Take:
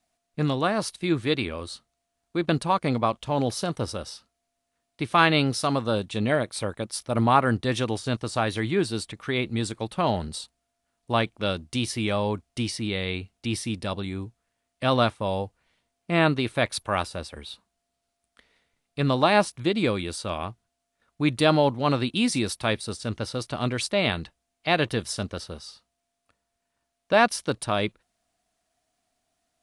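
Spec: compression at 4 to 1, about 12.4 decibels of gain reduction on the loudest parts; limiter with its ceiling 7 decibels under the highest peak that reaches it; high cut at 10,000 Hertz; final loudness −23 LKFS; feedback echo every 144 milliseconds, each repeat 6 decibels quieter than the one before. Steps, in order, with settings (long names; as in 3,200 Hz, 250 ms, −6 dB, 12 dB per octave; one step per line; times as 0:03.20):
low-pass filter 10,000 Hz
downward compressor 4 to 1, threshold −29 dBFS
brickwall limiter −22.5 dBFS
repeating echo 144 ms, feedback 50%, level −6 dB
level +11 dB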